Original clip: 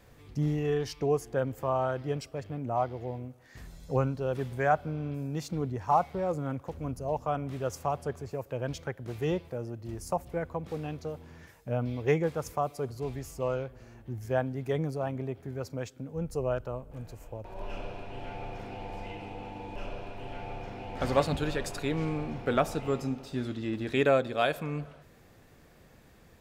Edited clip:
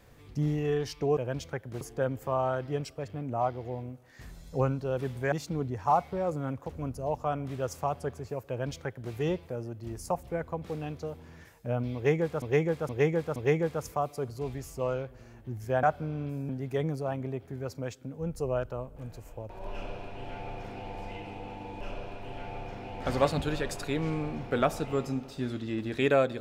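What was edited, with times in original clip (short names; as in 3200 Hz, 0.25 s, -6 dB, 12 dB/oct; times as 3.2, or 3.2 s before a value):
4.68–5.34 move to 14.44
8.51–9.15 copy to 1.17
11.97–12.44 loop, 4 plays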